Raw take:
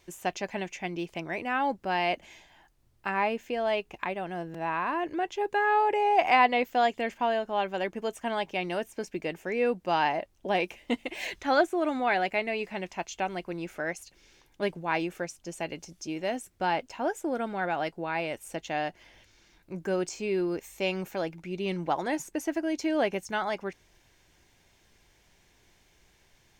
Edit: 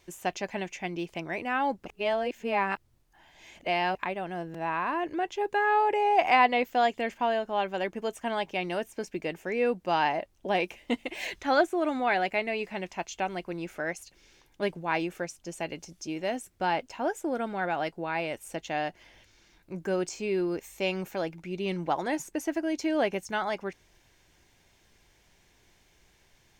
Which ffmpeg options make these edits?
ffmpeg -i in.wav -filter_complex "[0:a]asplit=3[link_01][link_02][link_03];[link_01]atrim=end=1.862[link_04];[link_02]atrim=start=1.858:end=3.952,asetpts=PTS-STARTPTS,areverse[link_05];[link_03]atrim=start=3.948[link_06];[link_04][link_05]acrossfade=duration=0.004:curve1=hsin:curve2=hsin[link_07];[link_07][link_06]acrossfade=duration=0.004:curve1=hsin:curve2=hsin" out.wav

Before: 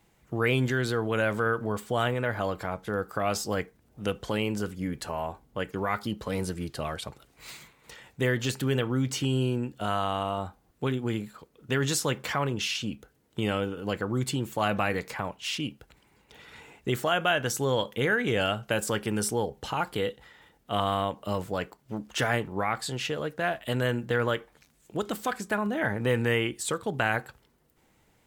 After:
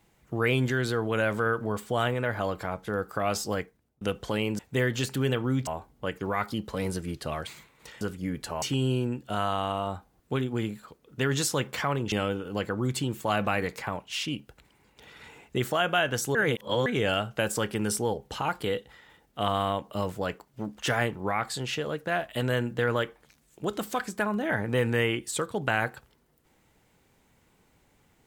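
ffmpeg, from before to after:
ffmpeg -i in.wav -filter_complex "[0:a]asplit=10[link_01][link_02][link_03][link_04][link_05][link_06][link_07][link_08][link_09][link_10];[link_01]atrim=end=4.01,asetpts=PTS-STARTPTS,afade=type=out:start_time=3.51:duration=0.5[link_11];[link_02]atrim=start=4.01:end=4.592,asetpts=PTS-STARTPTS,afade=type=in:duration=0.004:curve=hsin[link_12];[link_03]atrim=start=8.048:end=9.132[link_13];[link_04]atrim=start=5.198:end=7.002[link_14];[link_05]atrim=start=7.508:end=8.052[link_15];[link_06]atrim=start=4.588:end=5.202[link_16];[link_07]atrim=start=9.128:end=12.632[link_17];[link_08]atrim=start=13.438:end=17.672[link_18];[link_09]atrim=start=17.668:end=18.182,asetpts=PTS-STARTPTS,areverse[link_19];[link_10]atrim=start=18.178[link_20];[link_11][link_12]concat=n=2:v=0:a=1[link_21];[link_21][link_13]acrossfade=duration=0.004:curve1=hsin:curve2=hsin[link_22];[link_22][link_14]acrossfade=duration=0.004:curve1=hsin:curve2=hsin[link_23];[link_23][link_15]acrossfade=duration=0.004:curve1=hsin:curve2=hsin[link_24];[link_24][link_16]acrossfade=duration=0.004:curve1=hsin:curve2=hsin[link_25];[link_25][link_17]acrossfade=duration=0.004:curve1=hsin:curve2=hsin[link_26];[link_26][link_18]acrossfade=duration=0.004:curve1=hsin:curve2=hsin[link_27];[link_27][link_19]acrossfade=duration=0.004:curve1=hsin:curve2=hsin[link_28];[link_28][link_20]acrossfade=duration=0.004:curve1=hsin:curve2=hsin" out.wav

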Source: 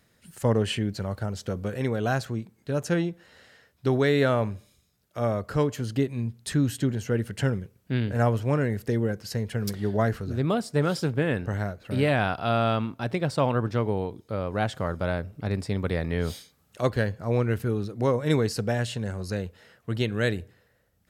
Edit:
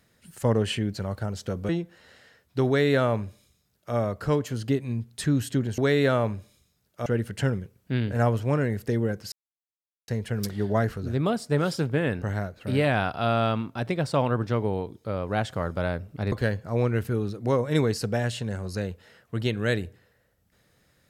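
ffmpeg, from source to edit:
ffmpeg -i in.wav -filter_complex "[0:a]asplit=6[link_01][link_02][link_03][link_04][link_05][link_06];[link_01]atrim=end=1.692[link_07];[link_02]atrim=start=2.968:end=7.062[link_08];[link_03]atrim=start=3.948:end=5.232[link_09];[link_04]atrim=start=7.058:end=9.32,asetpts=PTS-STARTPTS,afade=type=out:start_time=2.258:duration=0.004:curve=hsin,apad=pad_dur=0.76[link_10];[link_05]atrim=start=9.32:end=15.562,asetpts=PTS-STARTPTS,afade=type=in:duration=0.004:curve=hsin[link_11];[link_06]atrim=start=16.868[link_12];[link_07][link_08]acrossfade=duration=0.004:curve1=hsin:curve2=hsin[link_13];[link_13][link_09]acrossfade=duration=0.004:curve1=hsin:curve2=hsin[link_14];[link_10][link_11]concat=n=2:v=0:a=1[link_15];[link_14][link_15]acrossfade=duration=0.004:curve1=hsin:curve2=hsin[link_16];[link_16][link_12]acrossfade=duration=0.004:curve1=hsin:curve2=hsin" out.wav

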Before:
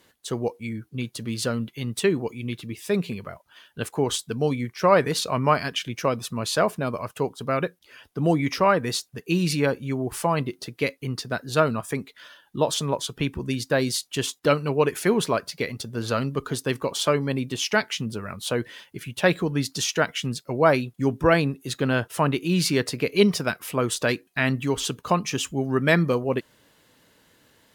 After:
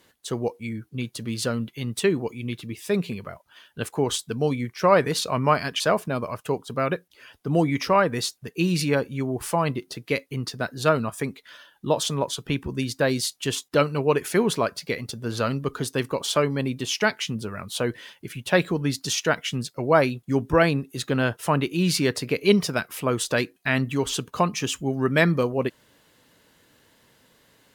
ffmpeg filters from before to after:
ffmpeg -i in.wav -filter_complex "[0:a]asplit=2[link_01][link_02];[link_01]atrim=end=5.802[link_03];[link_02]atrim=start=6.508[link_04];[link_03][link_04]acrossfade=duration=0.004:curve1=hsin:curve2=hsin" out.wav

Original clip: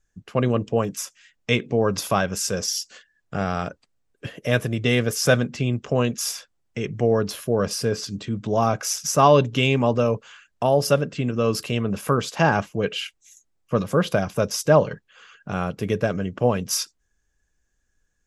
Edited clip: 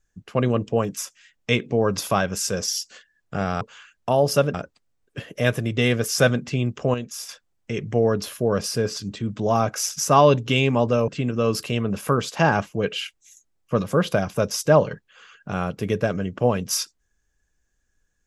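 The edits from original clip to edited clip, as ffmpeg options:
ffmpeg -i in.wav -filter_complex "[0:a]asplit=6[link_01][link_02][link_03][link_04][link_05][link_06];[link_01]atrim=end=3.612[link_07];[link_02]atrim=start=10.148:end=11.082[link_08];[link_03]atrim=start=3.608:end=6.012[link_09];[link_04]atrim=start=6.008:end=6.362,asetpts=PTS-STARTPTS,volume=-7.5dB[link_10];[link_05]atrim=start=6.358:end=10.152[link_11];[link_06]atrim=start=11.078[link_12];[link_07][link_08]acrossfade=duration=0.004:curve1=hsin:curve2=hsin[link_13];[link_13][link_09]acrossfade=duration=0.004:curve1=hsin:curve2=hsin[link_14];[link_14][link_10]acrossfade=duration=0.004:curve1=hsin:curve2=hsin[link_15];[link_15][link_11]acrossfade=duration=0.004:curve1=hsin:curve2=hsin[link_16];[link_16][link_12]acrossfade=duration=0.004:curve1=hsin:curve2=hsin" out.wav

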